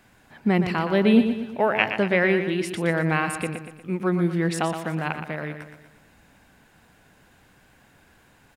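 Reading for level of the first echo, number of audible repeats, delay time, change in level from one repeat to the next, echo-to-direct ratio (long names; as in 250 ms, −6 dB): −8.5 dB, 5, 119 ms, −6.5 dB, −7.5 dB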